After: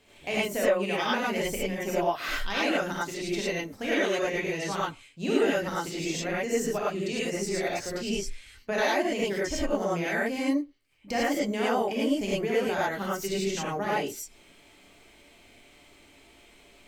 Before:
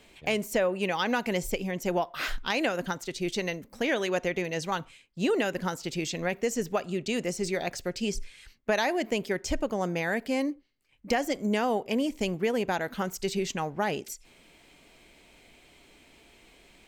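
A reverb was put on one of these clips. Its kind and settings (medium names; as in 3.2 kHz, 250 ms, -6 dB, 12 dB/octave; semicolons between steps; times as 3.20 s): gated-style reverb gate 130 ms rising, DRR -7.5 dB; trim -6.5 dB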